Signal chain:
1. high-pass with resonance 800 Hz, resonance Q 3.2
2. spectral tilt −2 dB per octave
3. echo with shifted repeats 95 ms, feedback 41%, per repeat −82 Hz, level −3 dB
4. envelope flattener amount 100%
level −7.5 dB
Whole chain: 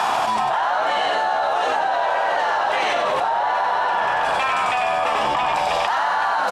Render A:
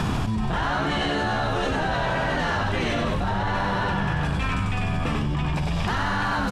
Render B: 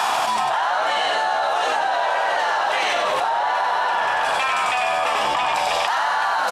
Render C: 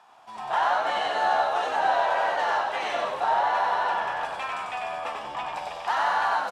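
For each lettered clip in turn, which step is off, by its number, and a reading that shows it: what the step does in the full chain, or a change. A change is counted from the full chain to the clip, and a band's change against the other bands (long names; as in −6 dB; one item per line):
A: 1, 250 Hz band +16.5 dB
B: 2, 8 kHz band +5.5 dB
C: 4, change in crest factor +3.0 dB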